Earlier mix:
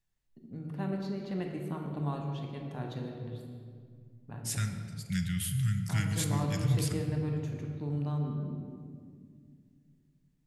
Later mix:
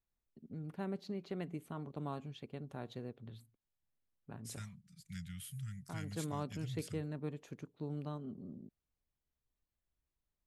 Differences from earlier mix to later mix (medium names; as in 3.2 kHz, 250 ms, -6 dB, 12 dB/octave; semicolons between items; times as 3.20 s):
second voice -12.0 dB; reverb: off